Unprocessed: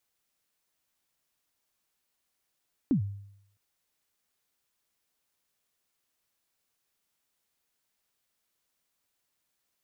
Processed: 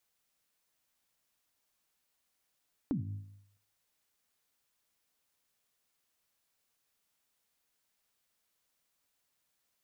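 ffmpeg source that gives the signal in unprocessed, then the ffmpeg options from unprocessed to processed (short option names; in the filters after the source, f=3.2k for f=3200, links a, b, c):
-f lavfi -i "aevalsrc='0.112*pow(10,-3*t/0.74)*sin(2*PI*(310*0.102/log(100/310)*(exp(log(100/310)*min(t,0.102)/0.102)-1)+100*max(t-0.102,0)))':d=0.66:s=44100"
-af "bandreject=f=370:w=12,bandreject=f=52.3:t=h:w=4,bandreject=f=104.6:t=h:w=4,bandreject=f=156.9:t=h:w=4,bandreject=f=209.2:t=h:w=4,bandreject=f=261.5:t=h:w=4,bandreject=f=313.8:t=h:w=4,bandreject=f=366.1:t=h:w=4,acompressor=threshold=-35dB:ratio=2.5"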